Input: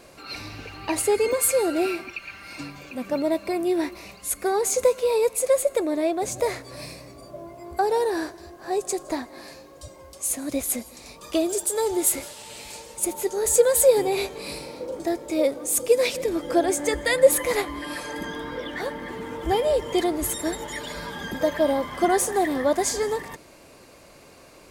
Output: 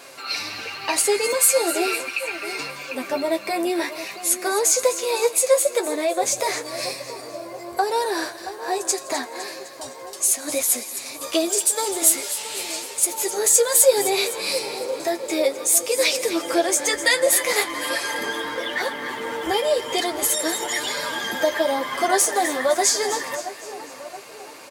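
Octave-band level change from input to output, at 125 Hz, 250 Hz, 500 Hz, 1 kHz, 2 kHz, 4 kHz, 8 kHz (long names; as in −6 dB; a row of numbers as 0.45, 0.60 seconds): can't be measured, −2.0 dB, 0.0 dB, +3.5 dB, +7.0 dB, +9.0 dB, +7.5 dB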